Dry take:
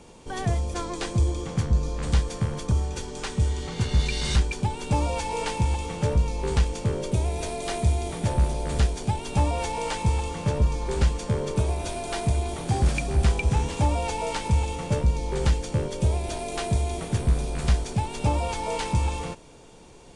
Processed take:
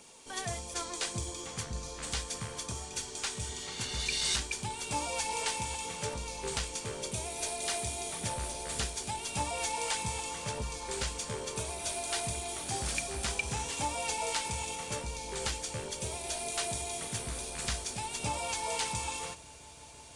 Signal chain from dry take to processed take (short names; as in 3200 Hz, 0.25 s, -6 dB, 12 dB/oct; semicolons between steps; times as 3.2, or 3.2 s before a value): tilt +3.5 dB/oct; phaser 1.7 Hz, delay 3.8 ms, feedback 27%; on a send at -13 dB: swelling echo 0.167 s, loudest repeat 8, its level -16.5 dB + reverb RT60 0.45 s, pre-delay 4 ms; on the sum: gain -7 dB